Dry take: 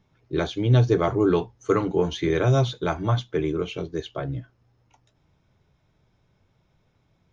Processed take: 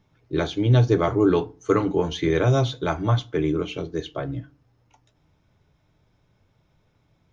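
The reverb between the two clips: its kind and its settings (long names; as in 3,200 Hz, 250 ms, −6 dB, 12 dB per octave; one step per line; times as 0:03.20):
feedback delay network reverb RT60 0.37 s, low-frequency decay 1.25×, high-frequency decay 0.65×, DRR 14 dB
level +1 dB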